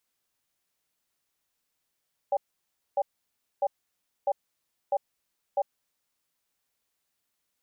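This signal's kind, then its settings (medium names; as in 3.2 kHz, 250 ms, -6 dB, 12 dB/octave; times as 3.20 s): cadence 573 Hz, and 795 Hz, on 0.05 s, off 0.60 s, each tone -24.5 dBFS 3.30 s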